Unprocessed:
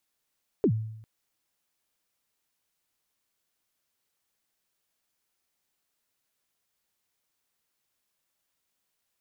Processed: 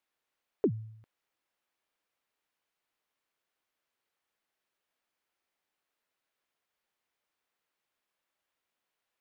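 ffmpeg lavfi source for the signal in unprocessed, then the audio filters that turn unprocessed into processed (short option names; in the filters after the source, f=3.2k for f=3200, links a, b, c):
-f lavfi -i "aevalsrc='0.141*pow(10,-3*t/0.8)*sin(2*PI*(470*0.074/log(110/470)*(exp(log(110/470)*min(t,0.074)/0.074)-1)+110*max(t-0.074,0)))':d=0.4:s=44100"
-af "bass=f=250:g=-9,treble=f=4k:g=-12"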